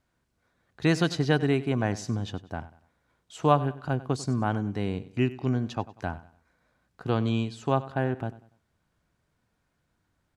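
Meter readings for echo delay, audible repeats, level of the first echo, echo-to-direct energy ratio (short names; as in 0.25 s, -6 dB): 96 ms, 2, -17.0 dB, -16.5 dB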